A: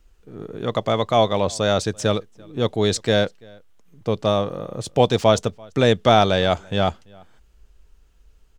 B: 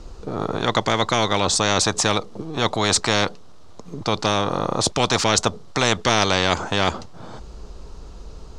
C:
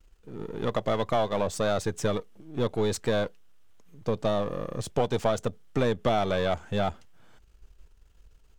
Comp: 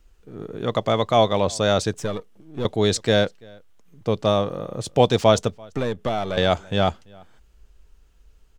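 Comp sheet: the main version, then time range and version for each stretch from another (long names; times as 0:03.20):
A
0:01.94–0:02.65: punch in from C
0:05.75–0:06.37: punch in from C
not used: B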